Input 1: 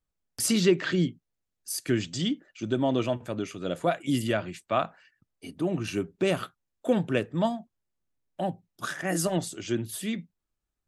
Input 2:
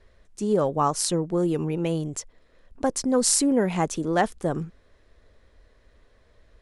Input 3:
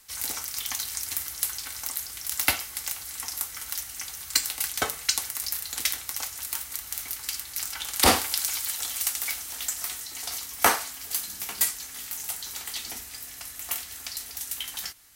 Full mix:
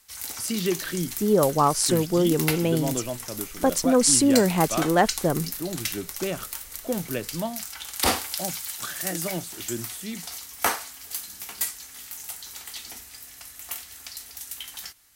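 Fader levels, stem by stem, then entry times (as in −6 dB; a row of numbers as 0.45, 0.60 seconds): −4.0, +2.5, −3.5 decibels; 0.00, 0.80, 0.00 seconds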